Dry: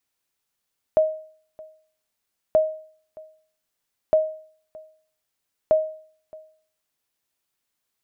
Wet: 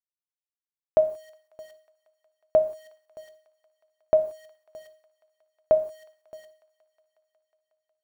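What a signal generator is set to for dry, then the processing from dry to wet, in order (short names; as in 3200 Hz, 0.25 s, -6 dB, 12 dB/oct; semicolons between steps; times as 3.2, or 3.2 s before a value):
sonar ping 627 Hz, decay 0.51 s, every 1.58 s, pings 4, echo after 0.62 s, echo -24 dB -10.5 dBFS
sample gate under -48.5 dBFS; thin delay 0.182 s, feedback 82%, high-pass 1500 Hz, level -23.5 dB; non-linear reverb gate 0.2 s falling, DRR 9.5 dB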